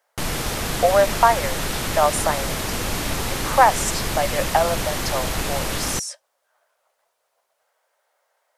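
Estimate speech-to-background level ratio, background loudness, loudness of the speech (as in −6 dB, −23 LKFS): 3.0 dB, −25.0 LKFS, −22.0 LKFS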